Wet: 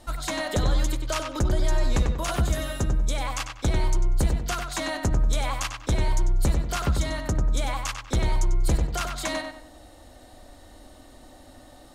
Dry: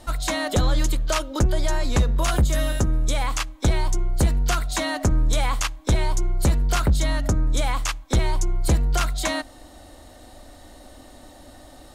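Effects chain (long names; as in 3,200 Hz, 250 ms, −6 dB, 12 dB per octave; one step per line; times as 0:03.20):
feedback echo with a low-pass in the loop 95 ms, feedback 33%, low-pass 3,800 Hz, level −4.5 dB
level −4.5 dB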